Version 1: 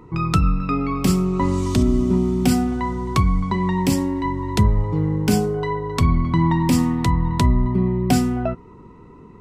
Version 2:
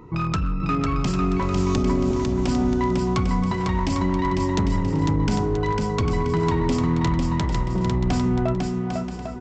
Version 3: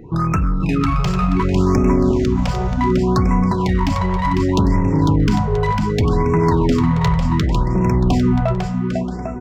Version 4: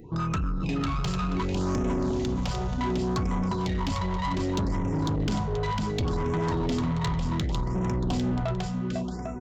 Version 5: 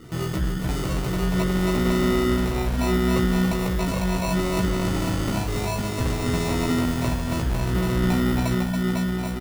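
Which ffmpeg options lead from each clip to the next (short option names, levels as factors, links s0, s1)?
-af "acompressor=threshold=0.112:ratio=5,aresample=16000,asoftclip=type=hard:threshold=0.119,aresample=44100,aecho=1:1:500|800|980|1088|1153:0.631|0.398|0.251|0.158|0.1"
-filter_complex "[0:a]asplit=2[s0][s1];[s1]adynamicsmooth=sensitivity=7:basefreq=1700,volume=1.06[s2];[s0][s2]amix=inputs=2:normalize=0,afftfilt=real='re*(1-between(b*sr/1024,260*pow(3900/260,0.5+0.5*sin(2*PI*0.67*pts/sr))/1.41,260*pow(3900/260,0.5+0.5*sin(2*PI*0.67*pts/sr))*1.41))':imag='im*(1-between(b*sr/1024,260*pow(3900/260,0.5+0.5*sin(2*PI*0.67*pts/sr))/1.41,260*pow(3900/260,0.5+0.5*sin(2*PI*0.67*pts/sr))*1.41))':win_size=1024:overlap=0.75"
-af "aresample=16000,asoftclip=type=tanh:threshold=0.178,aresample=44100,aexciter=amount=1.2:drive=9.3:freq=3100,volume=0.422"
-filter_complex "[0:a]acrusher=samples=27:mix=1:aa=0.000001,asplit=2[s0][s1];[s1]adelay=16,volume=0.668[s2];[s0][s2]amix=inputs=2:normalize=0,aecho=1:1:278:0.531,volume=1.12"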